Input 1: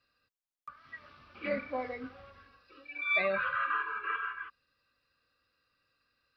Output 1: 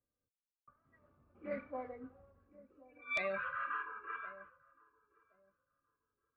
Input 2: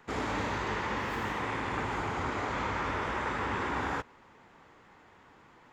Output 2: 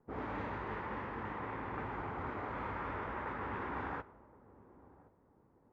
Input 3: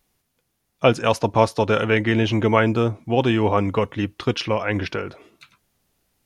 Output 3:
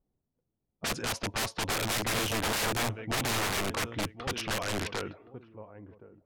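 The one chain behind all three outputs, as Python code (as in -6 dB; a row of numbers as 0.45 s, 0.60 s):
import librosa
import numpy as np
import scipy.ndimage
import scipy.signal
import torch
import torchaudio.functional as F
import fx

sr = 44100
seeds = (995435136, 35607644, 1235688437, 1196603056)

y = fx.echo_feedback(x, sr, ms=1070, feedback_pct=22, wet_db=-17.5)
y = (np.mod(10.0 ** (18.0 / 20.0) * y + 1.0, 2.0) - 1.0) / 10.0 ** (18.0 / 20.0)
y = fx.env_lowpass(y, sr, base_hz=520.0, full_db=-20.5)
y = y * 10.0 ** (-7.0 / 20.0)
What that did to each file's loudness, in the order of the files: -8.0 LU, -8.0 LU, -10.0 LU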